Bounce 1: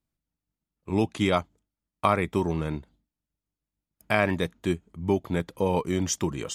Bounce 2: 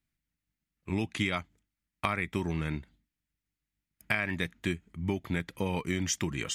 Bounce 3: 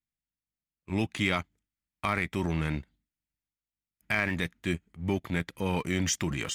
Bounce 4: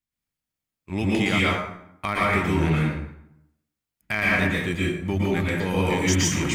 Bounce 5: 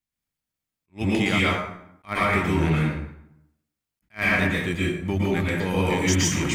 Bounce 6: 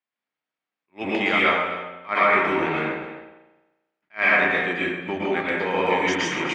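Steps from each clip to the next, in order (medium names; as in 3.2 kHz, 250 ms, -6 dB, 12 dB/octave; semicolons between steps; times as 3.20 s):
graphic EQ 500/1000/2000 Hz -7/-5/+9 dB; compression 6:1, threshold -26 dBFS, peak gain reduction 10 dB
waveshaping leveller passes 1; transient shaper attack -4 dB, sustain +6 dB; upward expansion 1.5:1, over -46 dBFS
plate-style reverb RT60 0.8 s, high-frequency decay 0.65×, pre-delay 105 ms, DRR -5.5 dB; trim +1.5 dB
attacks held to a fixed rise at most 350 dB/s
band-pass 440–2600 Hz; delay 260 ms -15 dB; spring tank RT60 1.1 s, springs 34 ms, chirp 30 ms, DRR 7 dB; trim +5 dB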